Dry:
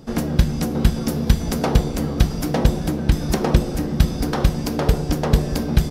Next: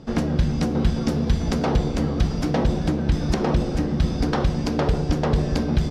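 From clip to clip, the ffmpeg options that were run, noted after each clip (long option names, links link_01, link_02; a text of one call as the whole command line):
ffmpeg -i in.wav -af "lowpass=5400,equalizer=frequency=80:width=1.5:gain=2,alimiter=limit=-9.5dB:level=0:latency=1:release=55" out.wav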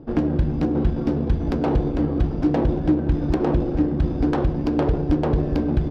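ffmpeg -i in.wav -af "equalizer=frequency=200:width_type=o:width=0.33:gain=-8,equalizer=frequency=315:width_type=o:width=0.33:gain=10,equalizer=frequency=1250:width_type=o:width=0.33:gain=-3,equalizer=frequency=2000:width_type=o:width=0.33:gain=-4,adynamicsmooth=sensitivity=1:basefreq=1400" out.wav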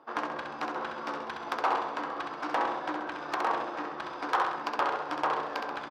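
ffmpeg -i in.wav -filter_complex "[0:a]highpass=frequency=1100:width_type=q:width=2.6,asplit=2[link_01][link_02];[link_02]aecho=0:1:66|132|198|264|330|396:0.562|0.281|0.141|0.0703|0.0351|0.0176[link_03];[link_01][link_03]amix=inputs=2:normalize=0,asoftclip=type=hard:threshold=-17.5dB" out.wav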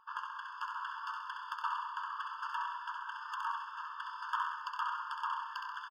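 ffmpeg -i in.wav -af "alimiter=limit=-21dB:level=0:latency=1:release=453,aecho=1:1:93|186|279|372|465|558:0.251|0.141|0.0788|0.0441|0.0247|0.0138,afftfilt=real='re*eq(mod(floor(b*sr/1024/890),2),1)':imag='im*eq(mod(floor(b*sr/1024/890),2),1)':win_size=1024:overlap=0.75,volume=-3dB" out.wav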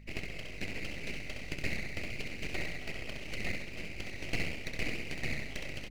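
ffmpeg -i in.wav -af "aeval=exprs='abs(val(0))':channel_layout=same,aeval=exprs='val(0)+0.00178*(sin(2*PI*50*n/s)+sin(2*PI*2*50*n/s)/2+sin(2*PI*3*50*n/s)/3+sin(2*PI*4*50*n/s)/4+sin(2*PI*5*50*n/s)/5)':channel_layout=same,volume=4dB" out.wav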